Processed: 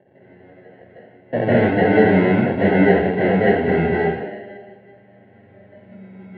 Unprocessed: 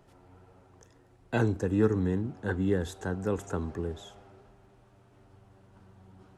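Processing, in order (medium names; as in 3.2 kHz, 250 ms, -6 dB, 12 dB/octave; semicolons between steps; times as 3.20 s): spectral noise reduction 9 dB; sample-and-hold 37×; saturation -30 dBFS, distortion -6 dB; cabinet simulation 230–2700 Hz, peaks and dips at 300 Hz -7 dB, 570 Hz +6 dB, 1.2 kHz -9 dB, 2.1 kHz +7 dB; reverberation RT60 0.70 s, pre-delay 140 ms, DRR -7.5 dB; trim +1 dB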